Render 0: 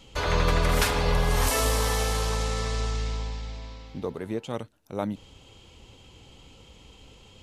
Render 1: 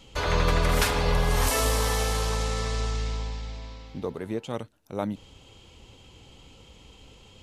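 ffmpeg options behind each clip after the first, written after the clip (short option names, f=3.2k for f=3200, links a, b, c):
-af anull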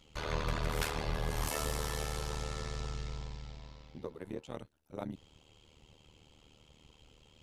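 -filter_complex "[0:a]tremolo=f=76:d=0.947,asplit=2[a][b];[b]asoftclip=type=hard:threshold=-27.5dB,volume=-9dB[c];[a][c]amix=inputs=2:normalize=0,volume=-9dB"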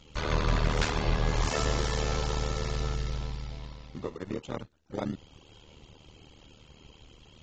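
-filter_complex "[0:a]asplit=2[a][b];[b]acrusher=samples=38:mix=1:aa=0.000001:lfo=1:lforange=38:lforate=0.31,volume=-8.5dB[c];[a][c]amix=inputs=2:normalize=0,volume=5.5dB" -ar 16000 -c:a aac -b:a 24k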